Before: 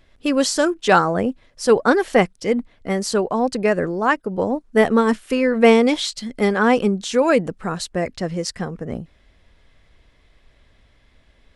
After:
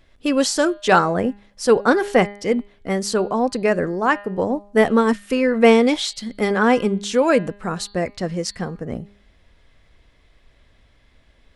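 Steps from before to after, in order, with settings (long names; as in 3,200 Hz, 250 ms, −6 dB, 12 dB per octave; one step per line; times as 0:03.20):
hum removal 203.2 Hz, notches 23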